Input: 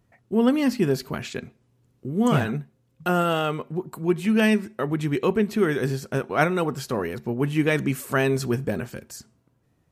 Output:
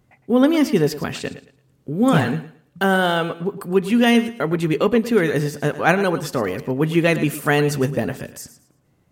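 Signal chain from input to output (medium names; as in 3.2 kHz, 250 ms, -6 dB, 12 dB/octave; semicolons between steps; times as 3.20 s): on a send: thinning echo 121 ms, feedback 26%, high-pass 150 Hz, level -13.5 dB; on the sum: speed mistake 44.1 kHz file played as 48 kHz; trim +4.5 dB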